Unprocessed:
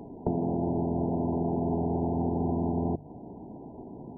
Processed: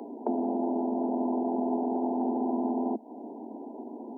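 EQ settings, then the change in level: steep high-pass 220 Hz 96 dB/oct; dynamic EQ 430 Hz, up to -6 dB, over -45 dBFS, Q 0.97; +5.0 dB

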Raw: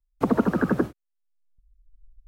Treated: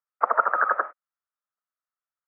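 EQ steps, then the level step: elliptic band-pass 580–1900 Hz, stop band 70 dB; air absorption 68 m; bell 1300 Hz +14 dB 0.41 oct; +3.0 dB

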